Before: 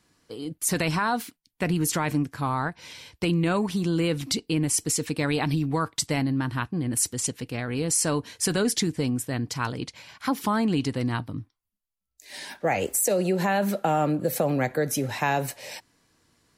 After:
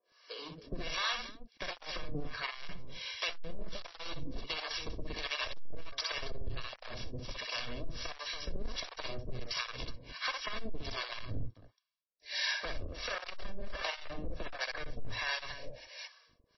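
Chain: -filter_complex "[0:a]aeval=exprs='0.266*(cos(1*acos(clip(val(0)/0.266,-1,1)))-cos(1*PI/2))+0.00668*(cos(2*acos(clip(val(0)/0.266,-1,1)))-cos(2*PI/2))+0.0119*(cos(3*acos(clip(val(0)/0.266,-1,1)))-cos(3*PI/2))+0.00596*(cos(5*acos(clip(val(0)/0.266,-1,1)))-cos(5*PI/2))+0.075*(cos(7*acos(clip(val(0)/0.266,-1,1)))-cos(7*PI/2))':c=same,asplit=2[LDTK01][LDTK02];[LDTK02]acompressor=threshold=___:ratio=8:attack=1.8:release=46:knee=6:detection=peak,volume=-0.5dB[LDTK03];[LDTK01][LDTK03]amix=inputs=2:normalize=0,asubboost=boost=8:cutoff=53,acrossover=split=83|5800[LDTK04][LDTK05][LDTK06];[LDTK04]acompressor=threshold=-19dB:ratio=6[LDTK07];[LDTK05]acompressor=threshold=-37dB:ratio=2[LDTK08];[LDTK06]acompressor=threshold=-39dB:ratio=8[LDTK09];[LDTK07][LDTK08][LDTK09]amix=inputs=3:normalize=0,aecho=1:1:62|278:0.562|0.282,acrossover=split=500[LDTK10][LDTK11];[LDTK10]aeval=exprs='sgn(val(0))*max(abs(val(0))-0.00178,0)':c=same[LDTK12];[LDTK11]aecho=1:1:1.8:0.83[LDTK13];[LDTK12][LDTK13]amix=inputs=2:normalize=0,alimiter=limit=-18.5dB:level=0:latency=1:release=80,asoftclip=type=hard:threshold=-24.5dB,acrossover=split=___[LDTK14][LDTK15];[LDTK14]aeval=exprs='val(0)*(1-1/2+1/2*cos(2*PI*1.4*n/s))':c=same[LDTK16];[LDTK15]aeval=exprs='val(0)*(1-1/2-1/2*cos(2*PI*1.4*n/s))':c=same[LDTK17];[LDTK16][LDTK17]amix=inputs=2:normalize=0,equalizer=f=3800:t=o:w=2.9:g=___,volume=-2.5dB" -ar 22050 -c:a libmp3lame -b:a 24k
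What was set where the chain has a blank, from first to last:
-34dB, 520, 5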